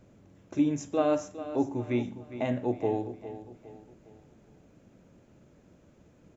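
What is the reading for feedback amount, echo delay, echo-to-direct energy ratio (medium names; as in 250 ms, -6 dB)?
40%, 408 ms, -12.0 dB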